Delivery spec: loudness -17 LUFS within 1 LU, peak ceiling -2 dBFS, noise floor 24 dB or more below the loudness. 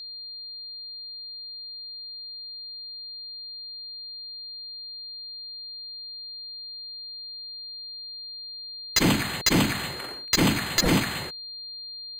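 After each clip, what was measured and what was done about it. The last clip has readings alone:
steady tone 4200 Hz; tone level -36 dBFS; loudness -29.5 LUFS; peak -13.5 dBFS; loudness target -17.0 LUFS
-> notch 4200 Hz, Q 30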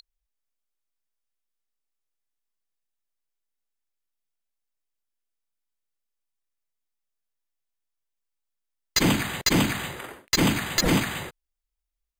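steady tone none; loudness -23.5 LUFS; peak -11.5 dBFS; loudness target -17.0 LUFS
-> gain +6.5 dB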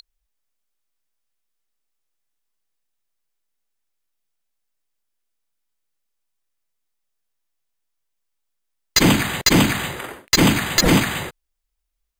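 loudness -17.0 LUFS; peak -5.0 dBFS; noise floor -76 dBFS

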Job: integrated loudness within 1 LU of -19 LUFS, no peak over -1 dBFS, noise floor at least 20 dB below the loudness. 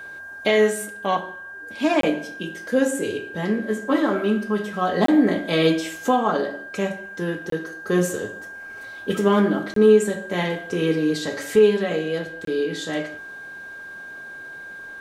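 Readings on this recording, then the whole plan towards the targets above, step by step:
dropouts 5; longest dropout 23 ms; steady tone 1600 Hz; tone level -35 dBFS; loudness -22.0 LUFS; peak -5.5 dBFS; loudness target -19.0 LUFS
-> interpolate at 2.01/5.06/7.5/9.74/12.45, 23 ms; notch 1600 Hz, Q 30; gain +3 dB

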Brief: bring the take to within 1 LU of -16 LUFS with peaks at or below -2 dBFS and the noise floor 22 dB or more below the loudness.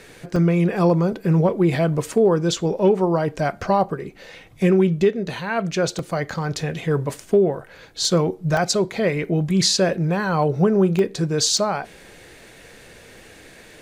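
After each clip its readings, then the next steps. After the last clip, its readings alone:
dropouts 7; longest dropout 1.6 ms; loudness -20.5 LUFS; peak -8.0 dBFS; loudness target -16.0 LUFS
-> interpolate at 0.36/5.34/5.99/8.05/8.57/10.99/11.57, 1.6 ms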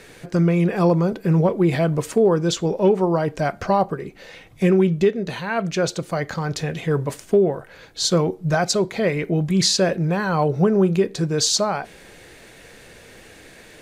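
dropouts 0; loudness -20.5 LUFS; peak -8.0 dBFS; loudness target -16.0 LUFS
-> gain +4.5 dB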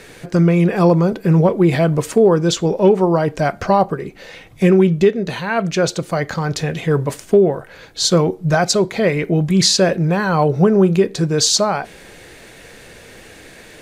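loudness -16.0 LUFS; peak -3.5 dBFS; noise floor -42 dBFS

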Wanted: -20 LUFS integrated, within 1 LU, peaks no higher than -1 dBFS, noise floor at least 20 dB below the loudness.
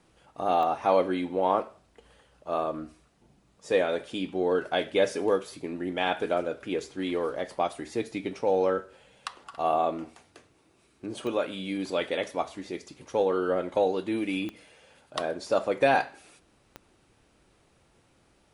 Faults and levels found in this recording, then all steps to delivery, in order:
clicks 4; loudness -28.5 LUFS; peak -10.5 dBFS; loudness target -20.0 LUFS
-> de-click; gain +8.5 dB

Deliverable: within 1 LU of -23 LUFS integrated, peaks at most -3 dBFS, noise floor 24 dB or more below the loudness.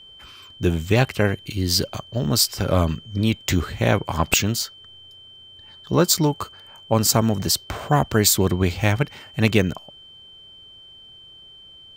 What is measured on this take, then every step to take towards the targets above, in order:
steady tone 3100 Hz; tone level -43 dBFS; loudness -21.0 LUFS; peak -2.5 dBFS; loudness target -23.0 LUFS
-> notch 3100 Hz, Q 30; gain -2 dB

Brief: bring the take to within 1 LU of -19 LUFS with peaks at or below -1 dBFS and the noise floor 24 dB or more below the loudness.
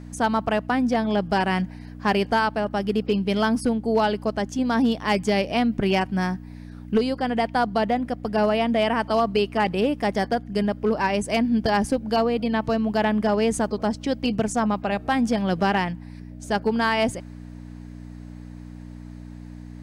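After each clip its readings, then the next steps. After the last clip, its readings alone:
clipped 0.4%; flat tops at -13.0 dBFS; hum 60 Hz; harmonics up to 300 Hz; hum level -37 dBFS; loudness -23.5 LUFS; peak -13.0 dBFS; loudness target -19.0 LUFS
-> clip repair -13 dBFS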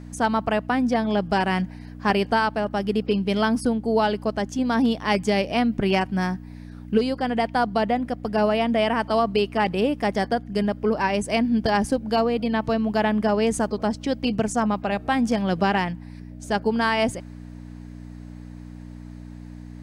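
clipped 0.0%; hum 60 Hz; harmonics up to 300 Hz; hum level -37 dBFS
-> de-hum 60 Hz, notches 5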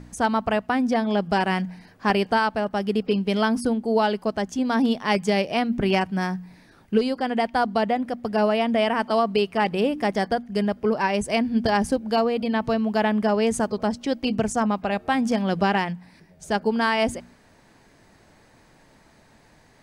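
hum none; loudness -23.5 LUFS; peak -4.5 dBFS; loudness target -19.0 LUFS
-> gain +4.5 dB; limiter -1 dBFS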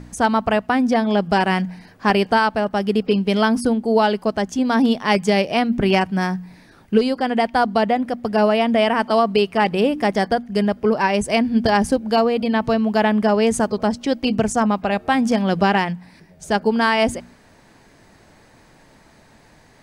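loudness -19.0 LUFS; peak -1.0 dBFS; noise floor -51 dBFS

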